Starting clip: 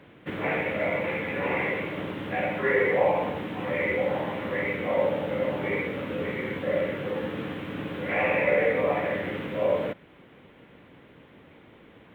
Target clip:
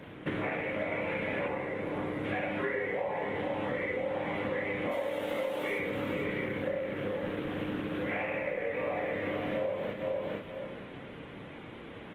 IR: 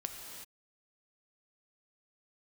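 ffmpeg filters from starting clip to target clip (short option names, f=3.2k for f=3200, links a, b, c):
-filter_complex "[0:a]asettb=1/sr,asplit=3[a][b][c];[a]atrim=end=4.914[d];[b]atrim=start=4.91:end=5.79,asetpts=PTS-STARTPTS,afade=t=in:d=0.004:c=qsin,afade=t=out:st=0.876:d=0.004:c=qsin,bass=f=250:g=-13,treble=f=4k:g=15[e];[c]atrim=start=5.786[f];[d][e]acrossfade=d=0.004:c1=hsin:c2=qsin[g];[g][f]acrossfade=d=0.004:c1=qsin:c2=hsin,asplit=2[h][i];[i]adelay=30,volume=-7dB[j];[h][j]amix=inputs=2:normalize=0,aresample=32000,aresample=44100,aecho=1:1:458|916|1374:0.355|0.0639|0.0115,acompressor=threshold=-35dB:ratio=16,asettb=1/sr,asplit=3[k][l][m];[k]atrim=end=1.484[n];[l]atrim=start=1.48:end=2.25,asetpts=PTS-STARTPTS,afade=t=in:d=0.004:c=qsin,afade=t=out:st=0.766:d=0.004:c=qsin,equalizer=f=2.6k:w=1.1:g=-9[o];[m]atrim=start=2.246[p];[n][o]acrossfade=d=0.004:c1=hsin:c2=qsin[q];[q][p]acrossfade=d=0.004:c1=qsin:c2=hsin,asettb=1/sr,asplit=3[r][s][t];[r]atrim=end=3.654[u];[s]atrim=start=3.65:end=4.06,asetpts=PTS-STARTPTS,afade=t=in:d=0.004:c=qsin,afade=t=out:st=0.406:d=0.004:c=qsin,bandreject=f=2.4k:w=9.2[v];[t]atrim=start=4.056[w];[u][v]acrossfade=d=0.004:c1=hsin:c2=qsin[x];[x][w]acrossfade=d=0.004:c1=qsin:c2=hsin,volume=5.5dB" -ar 48000 -c:a libopus -b:a 20k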